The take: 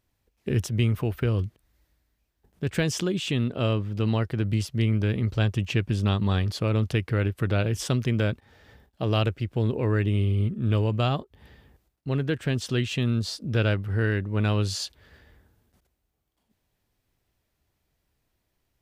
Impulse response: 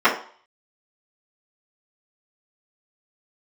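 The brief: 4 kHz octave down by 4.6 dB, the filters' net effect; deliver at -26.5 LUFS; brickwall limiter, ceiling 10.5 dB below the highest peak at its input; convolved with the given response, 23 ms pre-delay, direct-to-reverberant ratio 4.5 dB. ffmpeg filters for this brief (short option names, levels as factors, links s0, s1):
-filter_complex "[0:a]equalizer=f=4000:t=o:g=-6.5,alimiter=limit=0.0891:level=0:latency=1,asplit=2[s0][s1];[1:a]atrim=start_sample=2205,adelay=23[s2];[s1][s2]afir=irnorm=-1:irlink=0,volume=0.0422[s3];[s0][s3]amix=inputs=2:normalize=0,volume=1.68"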